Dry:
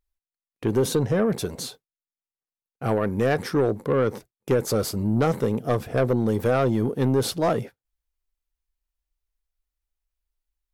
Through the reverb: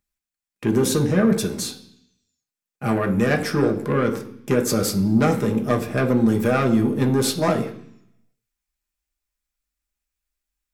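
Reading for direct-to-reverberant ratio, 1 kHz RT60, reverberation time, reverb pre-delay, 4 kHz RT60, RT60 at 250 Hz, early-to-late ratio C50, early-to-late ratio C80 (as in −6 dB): 3.0 dB, 0.70 s, 0.65 s, 3 ms, 0.90 s, 0.95 s, 12.5 dB, 15.5 dB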